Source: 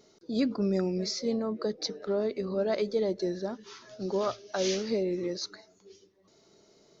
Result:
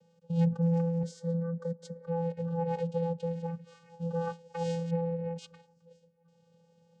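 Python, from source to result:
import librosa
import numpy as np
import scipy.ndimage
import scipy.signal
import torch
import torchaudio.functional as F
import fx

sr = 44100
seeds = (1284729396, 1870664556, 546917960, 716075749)

y = fx.lowpass(x, sr, hz=2700.0, slope=24, at=(4.9, 5.38))
y = fx.vocoder(y, sr, bands=8, carrier='square', carrier_hz=168.0)
y = fx.fixed_phaser(y, sr, hz=530.0, stages=8, at=(1.03, 2.07))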